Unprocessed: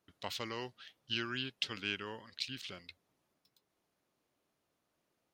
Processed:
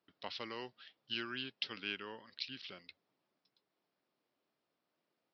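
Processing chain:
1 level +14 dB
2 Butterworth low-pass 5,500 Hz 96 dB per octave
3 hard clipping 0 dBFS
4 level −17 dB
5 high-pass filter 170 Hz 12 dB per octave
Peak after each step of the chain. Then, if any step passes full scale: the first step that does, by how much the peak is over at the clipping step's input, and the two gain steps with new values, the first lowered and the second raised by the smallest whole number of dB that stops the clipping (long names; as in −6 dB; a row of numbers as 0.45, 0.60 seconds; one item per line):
−3.5, −4.5, −4.5, −21.5, −21.5 dBFS
no step passes full scale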